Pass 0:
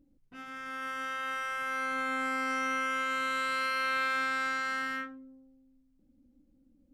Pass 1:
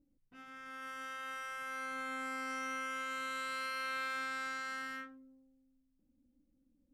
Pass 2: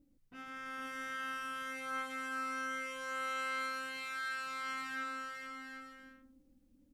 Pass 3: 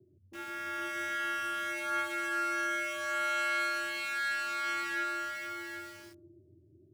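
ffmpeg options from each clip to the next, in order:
ffmpeg -i in.wav -af "adynamicequalizer=threshold=0.00562:dfrequency=4300:dqfactor=0.7:tfrequency=4300:tqfactor=0.7:attack=5:release=100:ratio=0.375:range=2.5:mode=boostabove:tftype=highshelf,volume=-8.5dB" out.wav
ffmpeg -i in.wav -filter_complex "[0:a]acompressor=threshold=-44dB:ratio=6,asplit=2[link_01][link_02];[link_02]aecho=0:1:460|759|953.4|1080|1162:0.631|0.398|0.251|0.158|0.1[link_03];[link_01][link_03]amix=inputs=2:normalize=0,volume=5dB" out.wav
ffmpeg -i in.wav -filter_complex "[0:a]afreqshift=80,acrossover=split=560[link_01][link_02];[link_02]aeval=exprs='val(0)*gte(abs(val(0)),0.00178)':channel_layout=same[link_03];[link_01][link_03]amix=inputs=2:normalize=0,volume=6.5dB" out.wav

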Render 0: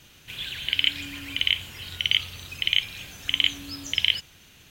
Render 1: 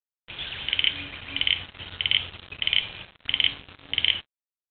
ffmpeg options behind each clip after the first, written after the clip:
ffmpeg -i in.wav -af "bandreject=frequency=141.2:width_type=h:width=4,bandreject=frequency=282.4:width_type=h:width=4,bandreject=frequency=423.6:width_type=h:width=4,bandreject=frequency=564.8:width_type=h:width=4,bandreject=frequency=706:width_type=h:width=4,bandreject=frequency=847.2:width_type=h:width=4,bandreject=frequency=988.4:width_type=h:width=4,bandreject=frequency=1129.6:width_type=h:width=4,bandreject=frequency=1270.8:width_type=h:width=4,bandreject=frequency=1412:width_type=h:width=4,bandreject=frequency=1553.2:width_type=h:width=4,bandreject=frequency=1694.4:width_type=h:width=4,bandreject=frequency=1835.6:width_type=h:width=4,bandreject=frequency=1976.8:width_type=h:width=4,bandreject=frequency=2118:width_type=h:width=4,bandreject=frequency=2259.2:width_type=h:width=4,bandreject=frequency=2400.4:width_type=h:width=4,bandreject=frequency=2541.6:width_type=h:width=4,bandreject=frequency=2682.8:width_type=h:width=4,bandreject=frequency=2824:width_type=h:width=4,bandreject=frequency=2965.2:width_type=h:width=4,bandreject=frequency=3106.4:width_type=h:width=4,bandreject=frequency=3247.6:width_type=h:width=4,bandreject=frequency=3388.8:width_type=h:width=4,bandreject=frequency=3530:width_type=h:width=4,bandreject=frequency=3671.2:width_type=h:width=4,bandreject=frequency=3812.4:width_type=h:width=4,bandreject=frequency=3953.6:width_type=h:width=4,bandreject=frequency=4094.8:width_type=h:width=4,bandreject=frequency=4236:width_type=h:width=4,bandreject=frequency=4377.2:width_type=h:width=4,bandreject=frequency=4518.4:width_type=h:width=4,aresample=8000,acrusher=bits=5:mix=0:aa=0.5,aresample=44100" out.wav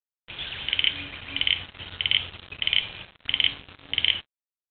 ffmpeg -i in.wav -af anull out.wav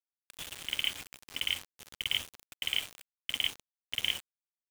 ffmpeg -i in.wav -af "agate=range=-33dB:threshold=-45dB:ratio=3:detection=peak,acrusher=bits=4:mix=0:aa=0.000001,volume=-9dB" out.wav

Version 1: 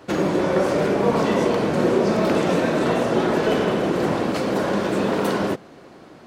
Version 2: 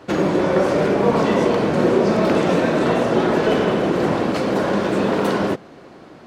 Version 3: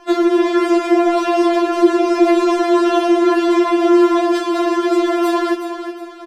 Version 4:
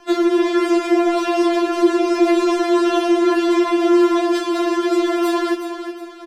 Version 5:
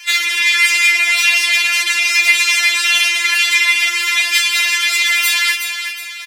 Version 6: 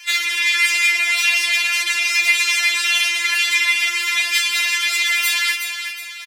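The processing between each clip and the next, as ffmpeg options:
ffmpeg -i in.wav -af "highshelf=frequency=7800:gain=-7.5,volume=2.5dB" out.wav
ffmpeg -i in.wav -filter_complex "[0:a]asplit=2[link_01][link_02];[link_02]asoftclip=type=tanh:threshold=-11.5dB,volume=-8dB[link_03];[link_01][link_03]amix=inputs=2:normalize=0,aecho=1:1:367|734|1101|1468:0.335|0.127|0.0484|0.0184,afftfilt=real='re*4*eq(mod(b,16),0)':imag='im*4*eq(mod(b,16),0)':win_size=2048:overlap=0.75,volume=3dB" out.wav
ffmpeg -i in.wav -filter_complex "[0:a]tiltshelf=frequency=1100:gain=-4,acrossover=split=410|1700[link_01][link_02][link_03];[link_01]acontrast=78[link_04];[link_04][link_02][link_03]amix=inputs=3:normalize=0,volume=-3.5dB" out.wav
ffmpeg -i in.wav -af "crystalizer=i=10:c=0,acontrast=79,highpass=frequency=2200:width_type=q:width=6.8,volume=-7.5dB" out.wav
ffmpeg -i in.wav -filter_complex "[0:a]asplit=2[link_01][link_02];[link_02]adelay=130,highpass=300,lowpass=3400,asoftclip=type=hard:threshold=-10dB,volume=-19dB[link_03];[link_01][link_03]amix=inputs=2:normalize=0,volume=-4dB" out.wav

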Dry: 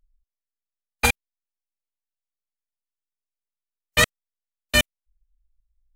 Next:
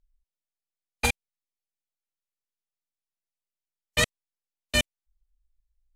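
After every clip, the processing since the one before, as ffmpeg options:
ffmpeg -i in.wav -af "lowpass=11000,equalizer=frequency=1400:width=1.5:gain=-5.5,volume=-4dB" out.wav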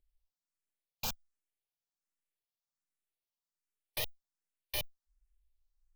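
ffmpeg -i in.wav -filter_complex "[0:a]aeval=exprs='(tanh(15.8*val(0)+0.6)-tanh(0.6))/15.8':channel_layout=same,aeval=exprs='(mod(23.7*val(0)+1,2)-1)/23.7':channel_layout=same,asplit=2[link_01][link_02];[link_02]afreqshift=1.3[link_03];[link_01][link_03]amix=inputs=2:normalize=1,volume=3dB" out.wav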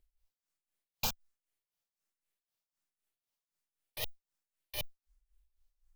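ffmpeg -i in.wav -af "tremolo=f=3.9:d=0.75,volume=5dB" out.wav

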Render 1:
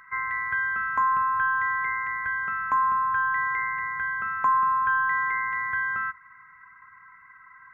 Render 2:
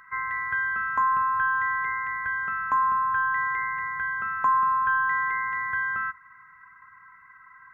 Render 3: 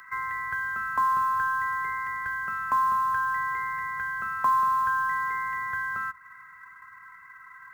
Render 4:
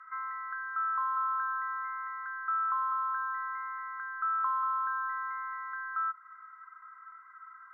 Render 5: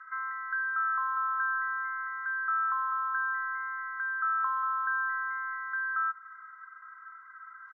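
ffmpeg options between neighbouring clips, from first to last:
ffmpeg -i in.wav -af "bandreject=frequency=2200:width=9" out.wav
ffmpeg -i in.wav -filter_complex "[0:a]highshelf=frequency=2200:gain=9.5,acrossover=split=350|1200[link_01][link_02][link_03];[link_03]acompressor=threshold=-36dB:ratio=12[link_04];[link_01][link_02][link_04]amix=inputs=3:normalize=0,acrusher=bits=7:mode=log:mix=0:aa=0.000001" out.wav
ffmpeg -i in.wav -filter_complex "[0:a]asplit=2[link_01][link_02];[link_02]asoftclip=type=tanh:threshold=-28.5dB,volume=-11.5dB[link_03];[link_01][link_03]amix=inputs=2:normalize=0,bandpass=frequency=1300:width_type=q:width=12:csg=0,volume=3.5dB" out.wav
ffmpeg -i in.wav -filter_complex "[0:a]equalizer=frequency=1600:width=4:gain=10.5,asplit=2[link_01][link_02];[link_02]adelay=180.8,volume=-23dB,highshelf=frequency=4000:gain=-4.07[link_03];[link_01][link_03]amix=inputs=2:normalize=0,volume=-2dB" -ar 16000 -c:a aac -b:a 24k out.aac

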